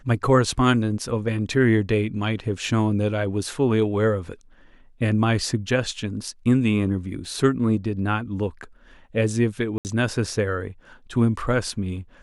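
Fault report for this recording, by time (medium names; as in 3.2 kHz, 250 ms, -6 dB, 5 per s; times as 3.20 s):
7.25 s: dropout 2.1 ms
9.78–9.85 s: dropout 69 ms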